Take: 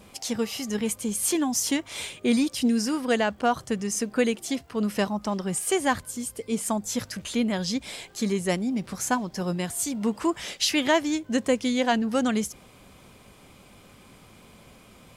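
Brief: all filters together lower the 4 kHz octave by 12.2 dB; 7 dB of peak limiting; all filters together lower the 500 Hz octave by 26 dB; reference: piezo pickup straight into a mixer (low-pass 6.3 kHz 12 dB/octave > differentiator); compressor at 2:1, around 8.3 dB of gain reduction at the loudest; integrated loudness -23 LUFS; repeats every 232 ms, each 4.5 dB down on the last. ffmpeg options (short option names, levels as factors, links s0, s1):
-af "equalizer=f=500:t=o:g=-4,equalizer=f=4000:t=o:g=-8.5,acompressor=threshold=0.0178:ratio=2,alimiter=level_in=1.41:limit=0.0631:level=0:latency=1,volume=0.708,lowpass=6300,aderivative,aecho=1:1:232|464|696|928|1160|1392|1624|1856|2088:0.596|0.357|0.214|0.129|0.0772|0.0463|0.0278|0.0167|0.01,volume=14.1"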